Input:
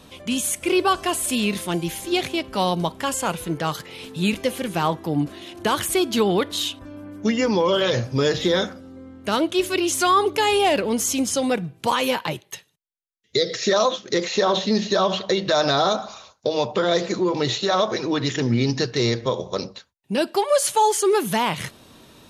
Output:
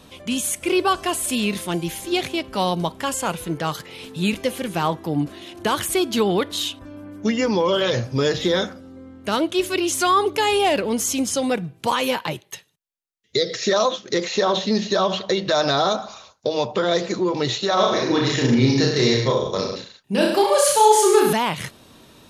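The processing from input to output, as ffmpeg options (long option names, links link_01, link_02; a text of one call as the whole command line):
ffmpeg -i in.wav -filter_complex "[0:a]asettb=1/sr,asplit=3[link_01][link_02][link_03];[link_01]atrim=end=17.744[link_04];[link_02]atrim=start=17.74:end=21.33,asetpts=PTS-STARTPTS,afade=type=in:duration=0.004:curve=qsin,afade=type=out:start_time=3.586:duration=0.004:curve=qsin,aecho=1:1:30|63|99.3|139.2|183.2:0.794|0.631|0.501|0.398|0.316,atrim=end_sample=158319[link_05];[link_03]atrim=start=21.326[link_06];[link_04][link_05]acrossfade=duration=0.004:curve1=hsin:curve2=qsin[link_07];[link_07][link_06]acrossfade=duration=0.004:curve1=qsin:curve2=hsin" out.wav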